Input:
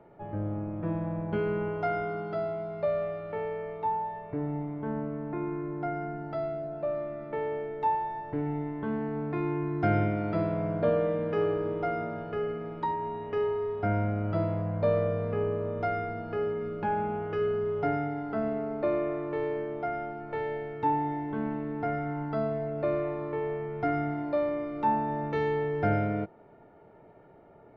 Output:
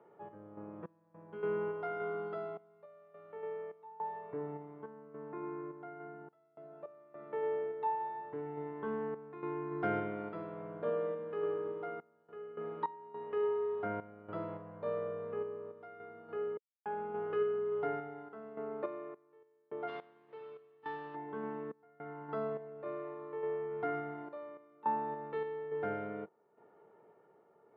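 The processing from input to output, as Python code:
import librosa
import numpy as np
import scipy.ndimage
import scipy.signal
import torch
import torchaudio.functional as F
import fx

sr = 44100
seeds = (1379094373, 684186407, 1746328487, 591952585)

y = fx.lower_of_two(x, sr, delay_ms=0.32, at=(19.87, 21.14), fade=0.02)
y = fx.tremolo_random(y, sr, seeds[0], hz=3.5, depth_pct=100)
y = fx.cabinet(y, sr, low_hz=240.0, low_slope=12, high_hz=3500.0, hz=(280.0, 440.0, 650.0, 1100.0, 2300.0), db=(-7, 5, -6, 5, -5))
y = y * librosa.db_to_amplitude(-4.0)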